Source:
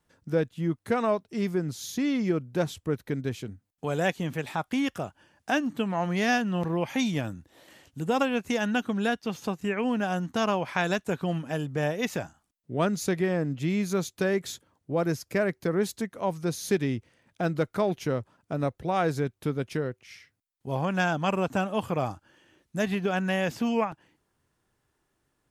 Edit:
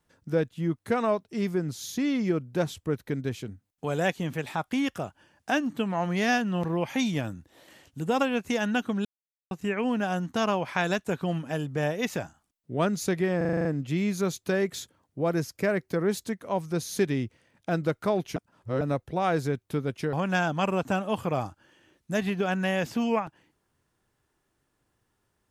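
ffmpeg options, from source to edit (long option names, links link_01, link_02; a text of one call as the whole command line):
ffmpeg -i in.wav -filter_complex "[0:a]asplit=13[link_01][link_02][link_03][link_04][link_05][link_06][link_07][link_08][link_09][link_10][link_11][link_12][link_13];[link_01]atrim=end=9.05,asetpts=PTS-STARTPTS,afade=type=out:start_time=9.046:duration=0.004:curve=hsin[link_14];[link_02]atrim=start=9.05:end=9.51,asetpts=PTS-STARTPTS,volume=0[link_15];[link_03]atrim=start=9.51:end=13.412,asetpts=PTS-STARTPTS,afade=type=in:duration=0.004:curve=hsin[link_16];[link_04]atrim=start=13.368:end=13.412[link_17];[link_05]atrim=start=13.368:end=13.412[link_18];[link_06]atrim=start=13.368:end=13.412[link_19];[link_07]atrim=start=13.368:end=13.412[link_20];[link_08]atrim=start=13.368:end=13.412[link_21];[link_09]atrim=start=13.368:end=13.412[link_22];[link_10]atrim=start=13.368:end=18.082[link_23];[link_11]atrim=start=18.078:end=18.532,asetpts=PTS-STARTPTS,areverse[link_24];[link_12]atrim=start=18.528:end=19.852[link_25];[link_13]atrim=start=20.778[link_26];[link_14][link_15][link_16]concat=n=3:v=0:a=1[link_27];[link_27][link_17]acrossfade=duration=0.004:curve1=hsin:curve2=hsin[link_28];[link_28][link_18]acrossfade=duration=0.004:curve1=hsin:curve2=hsin[link_29];[link_29][link_19]acrossfade=duration=0.004:curve1=hsin:curve2=hsin[link_30];[link_30][link_20]acrossfade=duration=0.004:curve1=hsin:curve2=hsin[link_31];[link_31][link_21]acrossfade=duration=0.004:curve1=hsin:curve2=hsin[link_32];[link_32][link_22]acrossfade=duration=0.004:curve1=hsin:curve2=hsin[link_33];[link_33][link_23]acrossfade=duration=0.004:curve1=hsin:curve2=hsin[link_34];[link_34][link_24]acrossfade=duration=0.004:curve1=hsin:curve2=hsin[link_35];[link_35][link_25]acrossfade=duration=0.004:curve1=hsin:curve2=hsin[link_36];[link_36][link_26]acrossfade=duration=0.004:curve1=hsin:curve2=hsin" out.wav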